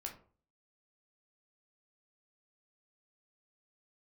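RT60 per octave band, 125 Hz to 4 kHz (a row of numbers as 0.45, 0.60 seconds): 0.55, 0.50, 0.45, 0.40, 0.30, 0.25 seconds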